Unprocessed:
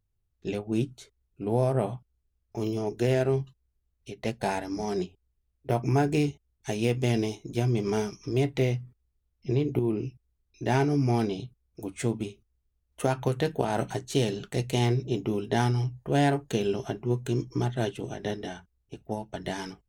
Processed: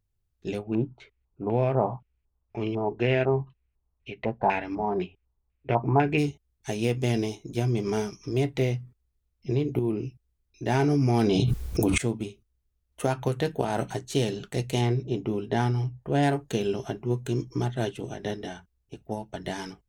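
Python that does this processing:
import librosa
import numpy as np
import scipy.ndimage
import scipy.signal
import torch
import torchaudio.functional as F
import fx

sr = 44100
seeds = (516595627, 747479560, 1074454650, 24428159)

y = fx.filter_lfo_lowpass(x, sr, shape='square', hz=2.0, low_hz=960.0, high_hz=2500.0, q=3.2, at=(0.63, 6.17), fade=0.02)
y = fx.env_flatten(y, sr, amount_pct=100, at=(10.79, 11.98))
y = fx.high_shelf(y, sr, hz=4400.0, db=-9.5, at=(14.81, 16.23))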